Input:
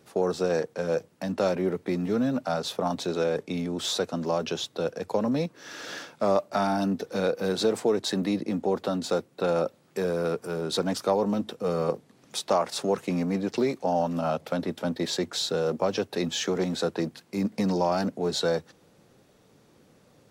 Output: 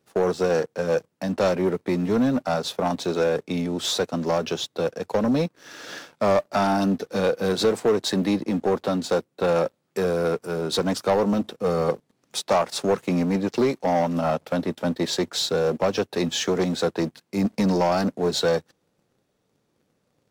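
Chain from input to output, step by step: sample leveller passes 2; upward expander 1.5:1, over -32 dBFS

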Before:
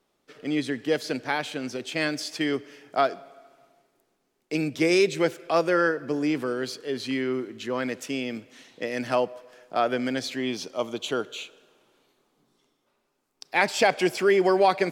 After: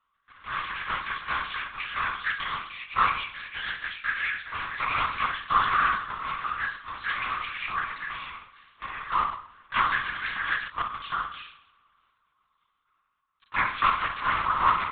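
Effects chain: cycle switcher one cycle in 3, inverted; ladder high-pass 1100 Hz, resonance 80%; on a send: flutter echo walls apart 9.2 m, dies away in 0.57 s; on the sum: echoes that change speed 0.152 s, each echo +6 st, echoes 3, each echo -6 dB; LPC vocoder at 8 kHz whisper; gain +4.5 dB

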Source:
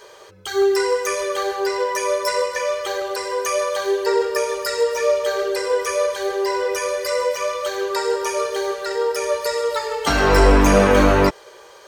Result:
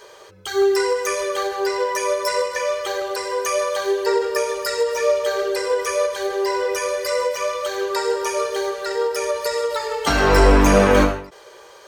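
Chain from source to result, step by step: ending taper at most 110 dB/s

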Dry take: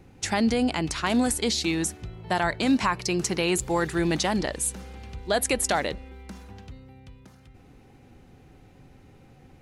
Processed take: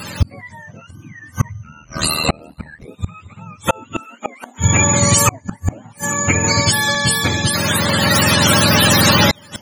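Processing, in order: spectrum mirrored in octaves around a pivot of 670 Hz; recorder AGC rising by 7.4 dB/s; 0.94–1.33 spectral repair 360–1600 Hz after; 1.63–2.88 ring modulator 39 Hz; 4–4.58 steep high-pass 220 Hz 72 dB/oct; flipped gate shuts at -21 dBFS, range -38 dB; maximiser +28 dB; 6.44–6.95 three-band squash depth 70%; gain -1.5 dB

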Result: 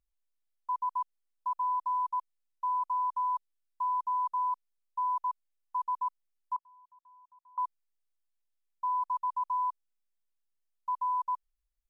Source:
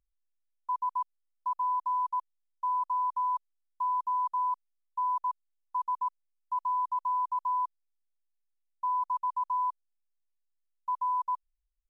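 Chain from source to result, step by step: 6.56–7.58 flipped gate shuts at -31 dBFS, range -28 dB; gain -1 dB

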